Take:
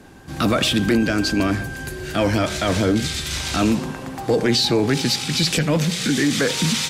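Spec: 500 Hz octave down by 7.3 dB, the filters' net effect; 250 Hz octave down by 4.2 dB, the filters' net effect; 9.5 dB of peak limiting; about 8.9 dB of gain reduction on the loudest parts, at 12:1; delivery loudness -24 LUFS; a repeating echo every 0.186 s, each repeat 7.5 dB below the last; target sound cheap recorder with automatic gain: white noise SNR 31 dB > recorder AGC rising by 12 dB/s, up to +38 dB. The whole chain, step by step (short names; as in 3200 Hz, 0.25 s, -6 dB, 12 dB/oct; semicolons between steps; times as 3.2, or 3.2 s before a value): bell 250 Hz -3 dB; bell 500 Hz -8.5 dB; compressor 12:1, threshold -26 dBFS; limiter -21.5 dBFS; feedback echo 0.186 s, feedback 42%, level -7.5 dB; white noise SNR 31 dB; recorder AGC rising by 12 dB/s, up to +38 dB; gain +5.5 dB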